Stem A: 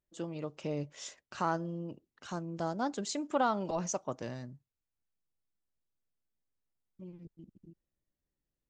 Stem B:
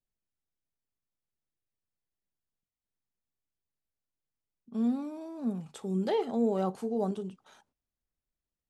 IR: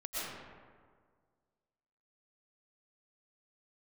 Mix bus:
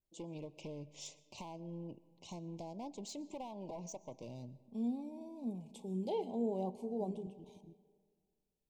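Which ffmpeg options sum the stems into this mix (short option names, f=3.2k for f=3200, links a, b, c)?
-filter_complex "[0:a]acompressor=threshold=-37dB:ratio=6,asoftclip=type=hard:threshold=-36.5dB,volume=-3.5dB,asplit=2[a][b];[b]volume=-22dB[c];[1:a]volume=-8.5dB,asplit=2[d][e];[e]volume=-19.5dB[f];[2:a]atrim=start_sample=2205[g];[c][f]amix=inputs=2:normalize=0[h];[h][g]afir=irnorm=-1:irlink=0[i];[a][d][i]amix=inputs=3:normalize=0,asuperstop=centerf=1500:order=12:qfactor=1.3,adynamicequalizer=threshold=0.00158:dfrequency=1700:dqfactor=0.7:tfrequency=1700:tqfactor=0.7:attack=5:release=100:ratio=0.375:range=3:mode=cutabove:tftype=highshelf"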